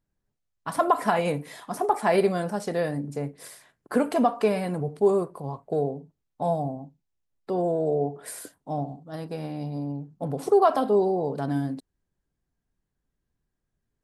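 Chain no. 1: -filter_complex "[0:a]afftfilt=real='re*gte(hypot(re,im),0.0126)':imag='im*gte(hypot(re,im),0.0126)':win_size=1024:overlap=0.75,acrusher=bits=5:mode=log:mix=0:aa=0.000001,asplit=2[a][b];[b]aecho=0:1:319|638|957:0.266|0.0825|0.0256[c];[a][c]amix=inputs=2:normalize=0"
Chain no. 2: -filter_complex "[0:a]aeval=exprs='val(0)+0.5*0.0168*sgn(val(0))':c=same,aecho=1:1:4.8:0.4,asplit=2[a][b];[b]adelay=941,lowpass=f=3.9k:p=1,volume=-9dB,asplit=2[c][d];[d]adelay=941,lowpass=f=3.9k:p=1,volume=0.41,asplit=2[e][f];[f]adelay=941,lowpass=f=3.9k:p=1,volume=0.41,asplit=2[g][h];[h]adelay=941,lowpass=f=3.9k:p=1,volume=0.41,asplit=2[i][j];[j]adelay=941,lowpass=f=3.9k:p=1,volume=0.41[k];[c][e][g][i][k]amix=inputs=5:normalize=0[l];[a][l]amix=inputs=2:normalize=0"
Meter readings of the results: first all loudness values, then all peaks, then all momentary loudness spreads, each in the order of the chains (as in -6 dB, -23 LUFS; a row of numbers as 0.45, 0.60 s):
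-26.5, -24.5 LUFS; -7.5, -6.5 dBFS; 15, 16 LU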